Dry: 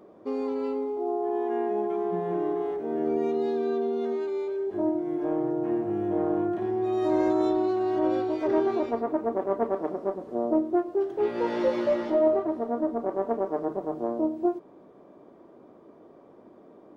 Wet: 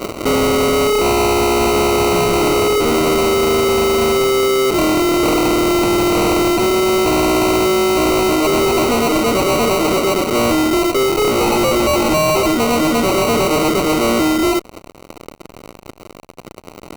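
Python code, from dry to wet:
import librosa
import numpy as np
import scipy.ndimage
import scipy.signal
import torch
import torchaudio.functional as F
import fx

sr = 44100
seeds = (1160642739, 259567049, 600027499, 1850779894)

y = fx.rider(x, sr, range_db=10, speed_s=2.0)
y = fx.fuzz(y, sr, gain_db=41.0, gate_db=-48.0)
y = fx.sample_hold(y, sr, seeds[0], rate_hz=1700.0, jitter_pct=0)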